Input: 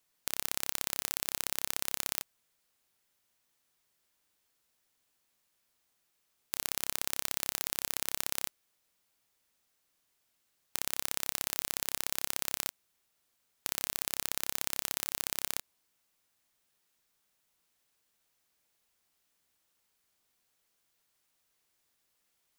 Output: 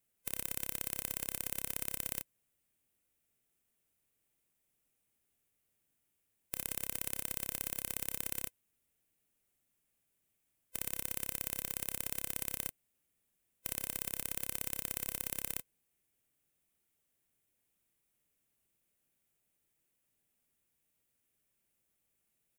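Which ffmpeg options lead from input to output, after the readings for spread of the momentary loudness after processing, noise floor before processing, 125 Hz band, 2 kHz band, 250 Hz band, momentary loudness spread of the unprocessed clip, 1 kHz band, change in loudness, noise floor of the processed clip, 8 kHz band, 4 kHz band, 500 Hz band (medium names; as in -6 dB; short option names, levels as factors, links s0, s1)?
4 LU, -77 dBFS, +2.5 dB, -6.5 dB, +0.5 dB, 4 LU, -9.0 dB, -3.5 dB, -81 dBFS, -4.5 dB, -10.0 dB, -3.0 dB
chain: -af "afftfilt=real='real(if(lt(b,1008),b+24*(1-2*mod(floor(b/24),2)),b),0)':imag='imag(if(lt(b,1008),b+24*(1-2*mod(floor(b/24),2)),b),0)':win_size=2048:overlap=0.75,firequalizer=gain_entry='entry(140,0);entry(1000,-13);entry(2400,-7);entry(4400,-16);entry(8700,-5)':delay=0.05:min_phase=1,volume=1.33"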